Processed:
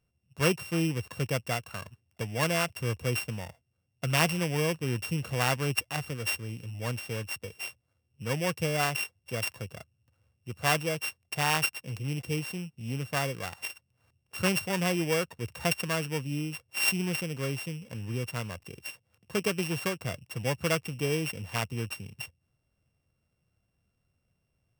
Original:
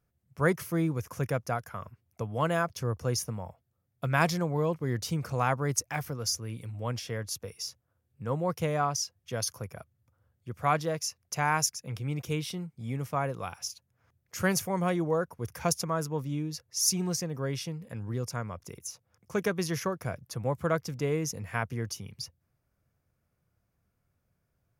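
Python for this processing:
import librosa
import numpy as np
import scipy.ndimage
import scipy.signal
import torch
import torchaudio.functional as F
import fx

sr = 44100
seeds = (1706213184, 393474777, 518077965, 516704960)

y = np.r_[np.sort(x[:len(x) // 16 * 16].reshape(-1, 16), axis=1).ravel(), x[len(x) // 16 * 16:]]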